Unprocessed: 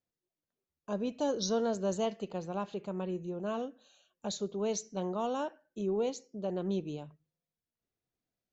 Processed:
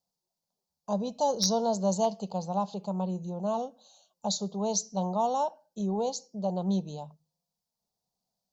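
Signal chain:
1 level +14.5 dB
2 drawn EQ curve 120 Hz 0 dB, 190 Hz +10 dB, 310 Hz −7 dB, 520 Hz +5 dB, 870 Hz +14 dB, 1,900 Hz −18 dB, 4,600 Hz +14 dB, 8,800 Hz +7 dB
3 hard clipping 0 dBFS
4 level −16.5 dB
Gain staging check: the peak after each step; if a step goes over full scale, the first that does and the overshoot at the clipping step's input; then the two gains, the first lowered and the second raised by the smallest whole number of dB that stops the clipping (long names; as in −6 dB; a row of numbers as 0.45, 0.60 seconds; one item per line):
−5.5, +5.0, 0.0, −16.5 dBFS
step 2, 5.0 dB
step 1 +9.5 dB, step 4 −11.5 dB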